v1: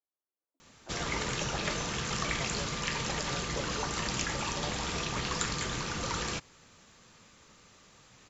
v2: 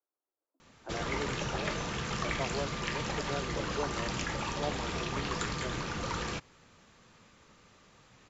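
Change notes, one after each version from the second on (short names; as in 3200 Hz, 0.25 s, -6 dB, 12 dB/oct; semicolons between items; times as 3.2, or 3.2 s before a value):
speech +7.0 dB; master: add high shelf 5100 Hz -11 dB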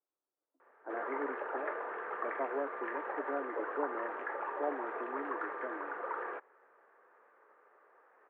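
background: add elliptic band-pass 400–1700 Hz, stop band 50 dB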